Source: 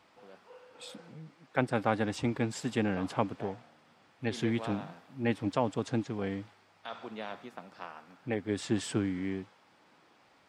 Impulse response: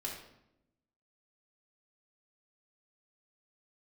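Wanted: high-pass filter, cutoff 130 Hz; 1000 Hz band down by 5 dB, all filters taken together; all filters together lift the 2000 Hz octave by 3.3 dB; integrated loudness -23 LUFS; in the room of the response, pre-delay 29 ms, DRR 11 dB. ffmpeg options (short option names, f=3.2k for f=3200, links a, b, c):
-filter_complex "[0:a]highpass=130,equalizer=f=1k:t=o:g=-8.5,equalizer=f=2k:t=o:g=7,asplit=2[a][b];[1:a]atrim=start_sample=2205,adelay=29[c];[b][c]afir=irnorm=-1:irlink=0,volume=-11.5dB[d];[a][d]amix=inputs=2:normalize=0,volume=11dB"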